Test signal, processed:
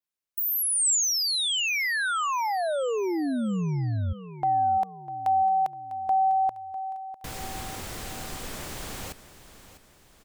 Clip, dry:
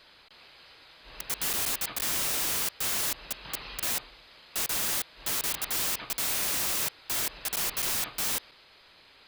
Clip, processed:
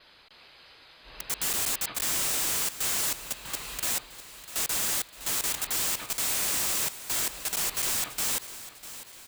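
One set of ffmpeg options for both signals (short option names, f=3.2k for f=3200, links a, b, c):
-af "adynamicequalizer=threshold=0.00355:dfrequency=7700:dqfactor=2.5:tfrequency=7700:tqfactor=2.5:attack=5:release=100:ratio=0.375:range=2.5:mode=boostabove:tftype=bell,aecho=1:1:650|1300|1950|2600:0.188|0.0866|0.0399|0.0183"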